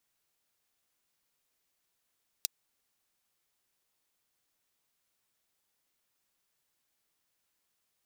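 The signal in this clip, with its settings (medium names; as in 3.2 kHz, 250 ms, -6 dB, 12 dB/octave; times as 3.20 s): closed hi-hat, high-pass 4.1 kHz, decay 0.02 s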